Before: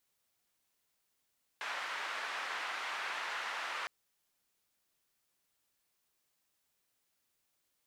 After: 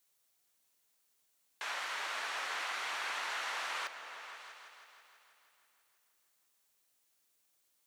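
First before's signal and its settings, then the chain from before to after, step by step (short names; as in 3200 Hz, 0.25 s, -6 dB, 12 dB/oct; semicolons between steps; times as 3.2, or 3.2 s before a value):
noise band 1100–1600 Hz, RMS -39.5 dBFS 2.26 s
tone controls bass -6 dB, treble +5 dB; notch 5000 Hz, Q 26; repeats that get brighter 0.162 s, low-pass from 200 Hz, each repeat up 2 oct, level -6 dB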